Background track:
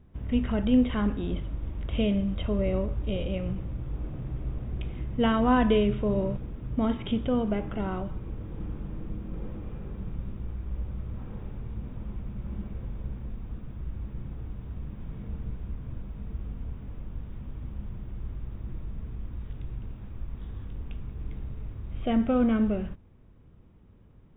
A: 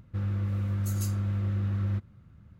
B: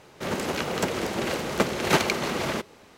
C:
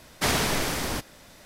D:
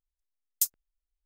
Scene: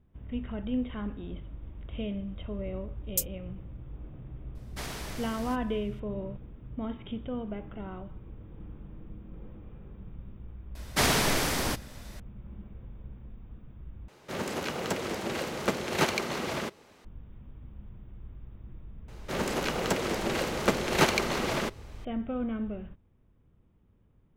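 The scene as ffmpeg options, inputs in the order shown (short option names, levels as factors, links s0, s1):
-filter_complex "[3:a]asplit=2[s0][s1];[2:a]asplit=2[s2][s3];[0:a]volume=0.355[s4];[s1]acontrast=82[s5];[s4]asplit=2[s6][s7];[s6]atrim=end=14.084[s8];[s2]atrim=end=2.97,asetpts=PTS-STARTPTS,volume=0.562[s9];[s7]atrim=start=17.046[s10];[4:a]atrim=end=1.25,asetpts=PTS-STARTPTS,volume=0.75,afade=t=in:d=0.004:c=hsin,afade=t=out:st=1.246:d=0.004:c=hsin,adelay=2560[s11];[s0]atrim=end=1.45,asetpts=PTS-STARTPTS,volume=0.178,afade=t=in:d=0.004:c=hsin,afade=t=out:st=1.446:d=0.004:c=hsin,adelay=4550[s12];[s5]atrim=end=1.45,asetpts=PTS-STARTPTS,volume=0.447,afade=t=in:d=0.004:c=hsin,afade=t=out:st=1.446:d=0.004:c=hsin,adelay=10750[s13];[s3]atrim=end=2.97,asetpts=PTS-STARTPTS,volume=0.794,afade=t=in:d=0.004:c=hsin,afade=t=out:st=2.966:d=0.004:c=hsin,adelay=841428S[s14];[s8][s9]acrossfade=d=0.004:c1=hsin:c2=hsin[s15];[s15][s10]acrossfade=d=0.004:c1=hsin:c2=hsin[s16];[s16][s11][s12][s13][s14]amix=inputs=5:normalize=0"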